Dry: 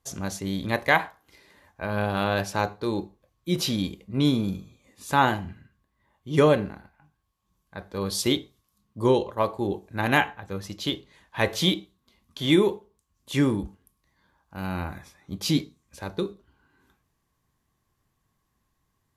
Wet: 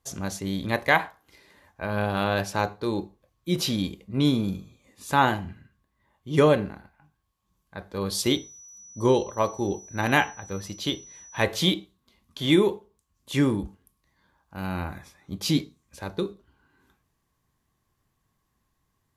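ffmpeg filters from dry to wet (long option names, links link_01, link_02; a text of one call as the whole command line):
ffmpeg -i in.wav -filter_complex "[0:a]asettb=1/sr,asplit=3[link_01][link_02][link_03];[link_01]atrim=end=8.194[link_04];[link_02]atrim=start=8.19:end=11.44,asetpts=PTS-STARTPTS,afade=type=in:duration=0.004:curve=qsin,afade=type=out:start_time=3.246:duration=0.004:curve=qsin,aeval=exprs='val(0)+0.00562*sin(2*PI*5900*n/s)':channel_layout=same[link_05];[link_03]atrim=start=11.436[link_06];[link_04][link_05]acrossfade=duration=0.004:curve1=hsin:curve2=qsin[link_07];[link_07][link_06]acrossfade=duration=0.004:curve1=qsin:curve2=hsin" out.wav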